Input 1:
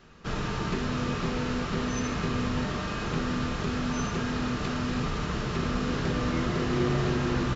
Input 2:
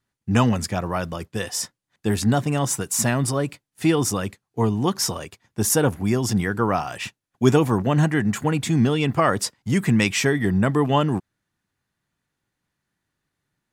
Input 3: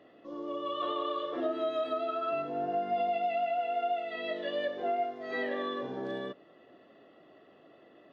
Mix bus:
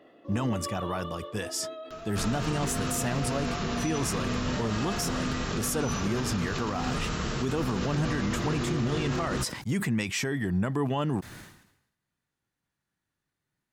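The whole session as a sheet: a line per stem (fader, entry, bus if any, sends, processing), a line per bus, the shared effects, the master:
-1.0 dB, 1.90 s, bus A, no send, high shelf 6600 Hz +12 dB; upward compressor, threshold -41 dBFS
-6.0 dB, 0.00 s, bus A, no send, dry
+2.5 dB, 0.00 s, no bus, no send, auto duck -13 dB, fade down 1.45 s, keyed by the second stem
bus A: 0.0 dB, vibrato 0.45 Hz 52 cents; limiter -20 dBFS, peak gain reduction 11.5 dB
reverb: off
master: sustainer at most 72 dB/s

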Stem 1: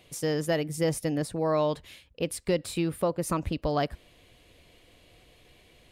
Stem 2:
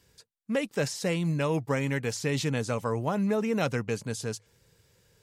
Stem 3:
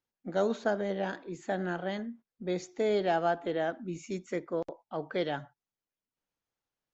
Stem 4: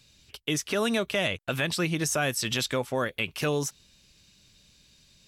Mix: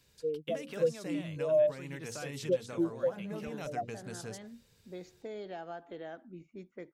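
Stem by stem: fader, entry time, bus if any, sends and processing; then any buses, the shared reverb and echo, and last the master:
+2.0 dB, 0.00 s, no bus, no send, spectral expander 4:1
-5.0 dB, 0.00 s, bus A, no send, notches 60/120/180/240/300/360/420/480/540 Hz
-10.5 dB, 2.45 s, bus A, no send, low-pass opened by the level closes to 350 Hz, open at -26.5 dBFS
-10.5 dB, 0.00 s, bus A, no send, high shelf 4600 Hz -8 dB
bus A: 0.0 dB, high shelf 10000 Hz +3.5 dB; compressor 4:1, threshold -39 dBFS, peak gain reduction 10 dB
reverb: off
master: compressor 1.5:1, threshold -33 dBFS, peak gain reduction 6 dB

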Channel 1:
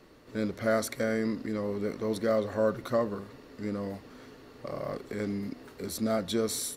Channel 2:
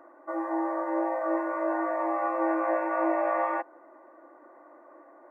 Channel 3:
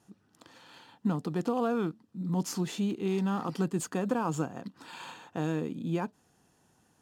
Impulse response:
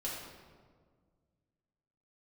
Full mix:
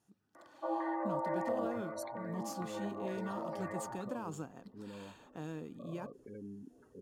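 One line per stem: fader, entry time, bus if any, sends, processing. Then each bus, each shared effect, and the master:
-13.5 dB, 1.15 s, no send, limiter -24 dBFS, peak gain reduction 9.5 dB; spectral gate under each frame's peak -15 dB strong
1.53 s -9.5 dB -> 1.75 s -19.5 dB, 0.35 s, send -5 dB, reverb removal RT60 1.8 s; LFO low-pass square 2.2 Hz 870–2100 Hz
-12.0 dB, 0.00 s, no send, dry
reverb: on, RT60 1.7 s, pre-delay 3 ms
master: high shelf 7400 Hz +4.5 dB

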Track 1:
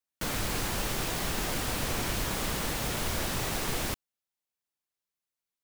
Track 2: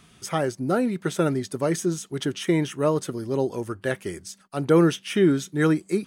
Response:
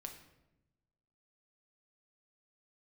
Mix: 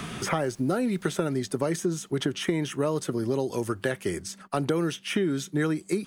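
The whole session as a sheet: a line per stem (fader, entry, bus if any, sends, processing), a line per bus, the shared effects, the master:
-20.0 dB, 0.00 s, no send, auto duck -21 dB, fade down 1.80 s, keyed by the second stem
0.0 dB, 0.00 s, no send, three-band squash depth 70%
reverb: off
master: compressor, threshold -22 dBFS, peak gain reduction 7.5 dB

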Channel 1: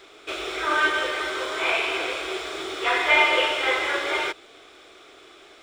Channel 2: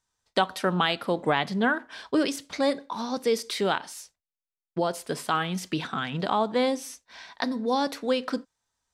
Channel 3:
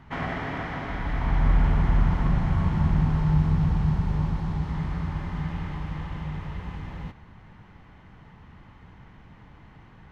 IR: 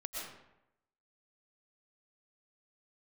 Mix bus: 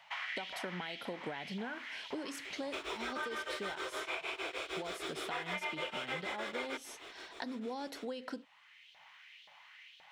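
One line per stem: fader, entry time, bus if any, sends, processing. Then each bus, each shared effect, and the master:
-2.0 dB, 2.45 s, no send, compressor 2:1, threshold -25 dBFS, peak gain reduction 6.5 dB; beating tremolo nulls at 6.5 Hz
-6.0 dB, 0.00 s, no send, compressor, threshold -25 dBFS, peak gain reduction 8 dB; notch comb 1200 Hz
-7.5 dB, 0.00 s, no send, Chebyshev band-stop 190–560 Hz, order 4; resonant high shelf 1900 Hz +11.5 dB, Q 1.5; LFO high-pass saw up 1.9 Hz 580–3800 Hz; auto duck -7 dB, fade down 1.10 s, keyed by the second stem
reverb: off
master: compressor 3:1, threshold -39 dBFS, peak gain reduction 12 dB

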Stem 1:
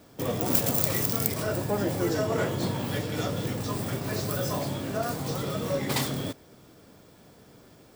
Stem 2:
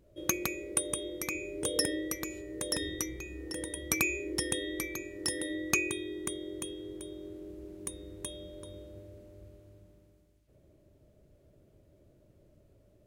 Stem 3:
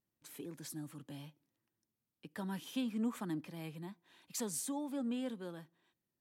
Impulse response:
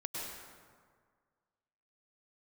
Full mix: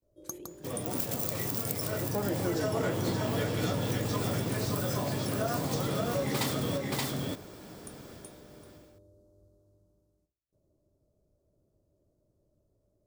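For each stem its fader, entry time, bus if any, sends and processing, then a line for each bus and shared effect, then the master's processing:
-8.0 dB, 0.45 s, no send, echo send -5 dB, AGC gain up to 13 dB
-9.0 dB, 0.00 s, no send, no echo send, gate with hold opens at -56 dBFS; Chebyshev band-stop 1100–5000 Hz, order 2; de-hum 68.47 Hz, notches 13
-6.0 dB, 0.00 s, no send, no echo send, dry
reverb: off
echo: echo 0.576 s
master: compressor 3:1, threshold -29 dBFS, peak gain reduction 8.5 dB

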